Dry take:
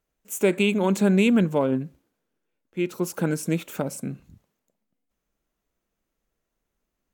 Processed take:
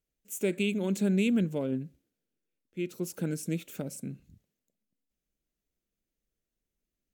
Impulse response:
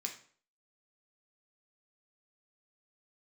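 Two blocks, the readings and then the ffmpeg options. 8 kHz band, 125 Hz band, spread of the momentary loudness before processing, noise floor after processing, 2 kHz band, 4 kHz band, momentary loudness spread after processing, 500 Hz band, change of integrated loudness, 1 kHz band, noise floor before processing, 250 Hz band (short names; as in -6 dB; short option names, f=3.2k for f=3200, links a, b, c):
-6.0 dB, -6.5 dB, 16 LU, under -85 dBFS, -9.0 dB, -7.5 dB, 15 LU, -9.0 dB, -8.0 dB, -17.0 dB, -82 dBFS, -7.0 dB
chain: -af "equalizer=f=1k:w=1.1:g=-13.5,volume=-6dB"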